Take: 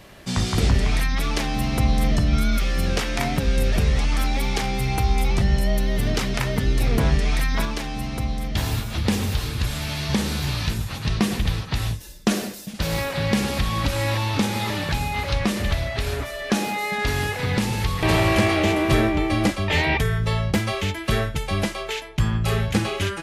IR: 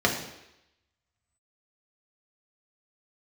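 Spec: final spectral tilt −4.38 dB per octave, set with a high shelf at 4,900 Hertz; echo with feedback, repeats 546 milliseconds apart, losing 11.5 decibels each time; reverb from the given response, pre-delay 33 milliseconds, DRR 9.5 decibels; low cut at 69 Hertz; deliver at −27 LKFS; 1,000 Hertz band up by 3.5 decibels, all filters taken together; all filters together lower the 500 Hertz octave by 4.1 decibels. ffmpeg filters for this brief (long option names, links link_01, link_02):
-filter_complex "[0:a]highpass=69,equalizer=frequency=500:width_type=o:gain=-8,equalizer=frequency=1000:width_type=o:gain=7,highshelf=frequency=4900:gain=3.5,aecho=1:1:546|1092|1638:0.266|0.0718|0.0194,asplit=2[link_01][link_02];[1:a]atrim=start_sample=2205,adelay=33[link_03];[link_02][link_03]afir=irnorm=-1:irlink=0,volume=-24.5dB[link_04];[link_01][link_04]amix=inputs=2:normalize=0,volume=-4dB"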